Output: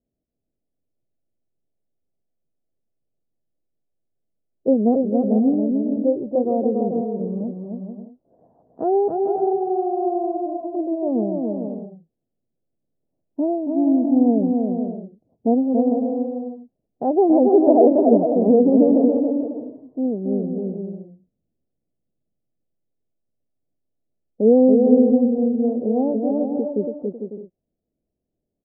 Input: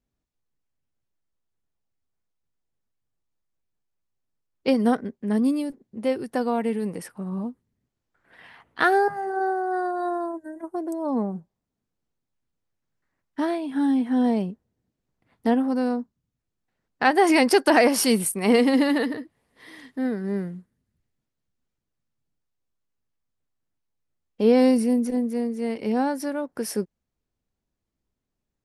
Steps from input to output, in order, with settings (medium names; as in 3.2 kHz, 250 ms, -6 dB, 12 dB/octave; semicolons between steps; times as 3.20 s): elliptic low-pass 660 Hz, stop band 70 dB; bass shelf 150 Hz -10 dB; bouncing-ball echo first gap 280 ms, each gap 0.6×, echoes 5; trim +6 dB